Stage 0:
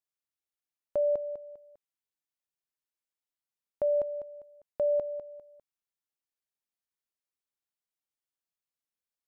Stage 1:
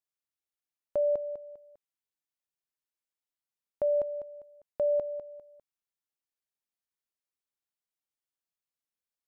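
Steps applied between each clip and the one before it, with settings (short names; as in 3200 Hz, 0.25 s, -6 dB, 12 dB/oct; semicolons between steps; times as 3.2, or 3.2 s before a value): nothing audible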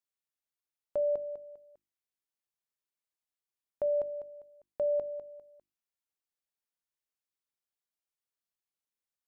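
notches 50/100/150/200/250/300/350 Hz; gain -2.5 dB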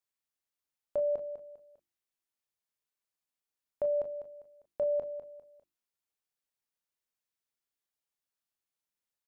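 early reflections 26 ms -10.5 dB, 37 ms -11 dB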